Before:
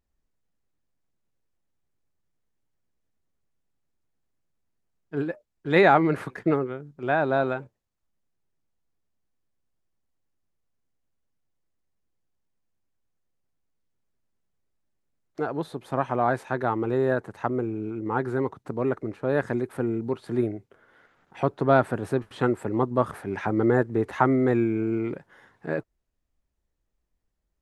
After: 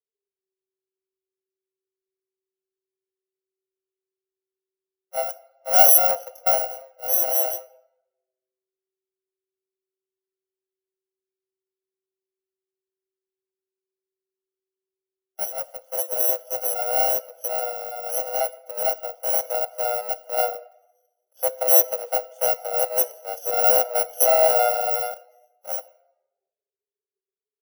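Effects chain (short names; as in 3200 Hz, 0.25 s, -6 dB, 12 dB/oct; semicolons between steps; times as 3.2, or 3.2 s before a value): FFT order left unsorted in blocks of 64 samples; frequency shift +380 Hz; in parallel at -3 dB: soft clip -14 dBFS, distortion -15 dB; on the sum: shoebox room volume 1400 m³, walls mixed, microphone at 0.56 m; spectral expander 1.5:1; gain -1 dB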